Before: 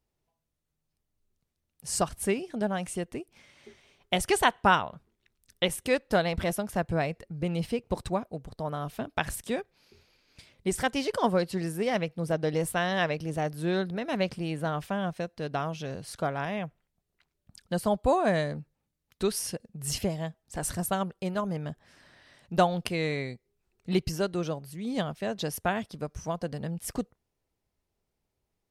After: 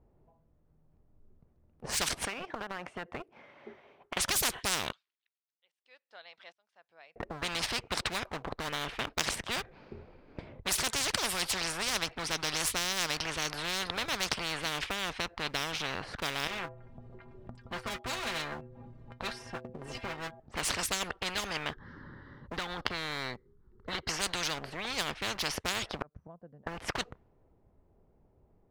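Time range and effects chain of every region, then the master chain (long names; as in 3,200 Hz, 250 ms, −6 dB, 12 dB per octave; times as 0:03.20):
0:02.25–0:04.17: high-pass filter 1,100 Hz 6 dB per octave + downward compressor 12 to 1, threshold −41 dBFS
0:04.92–0:07.16: first difference + volume swells 723 ms + resonant band-pass 4,100 Hz, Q 1.5
0:16.47–0:20.40: stiff-string resonator 120 Hz, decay 0.2 s, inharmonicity 0.008 + upward compression, threshold −42 dBFS
0:21.71–0:24.09: downward compressor 12 to 1, threshold −28 dBFS + phaser with its sweep stopped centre 2,500 Hz, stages 6
0:25.96–0:26.67: high-pass filter 53 Hz + dynamic equaliser 1,600 Hz, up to +6 dB, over −54 dBFS, Q 1.9 + gate with flip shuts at −31 dBFS, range −35 dB
whole clip: low-pass that shuts in the quiet parts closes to 820 Hz, open at −21.5 dBFS; leveller curve on the samples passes 1; every bin compressed towards the loudest bin 10 to 1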